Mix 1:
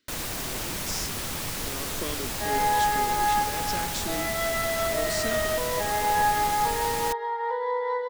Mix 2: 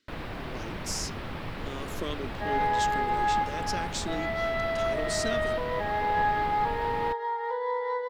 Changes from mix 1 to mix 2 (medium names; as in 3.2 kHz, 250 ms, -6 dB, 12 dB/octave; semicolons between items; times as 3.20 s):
first sound: add distance through air 420 m; second sound: send -11.0 dB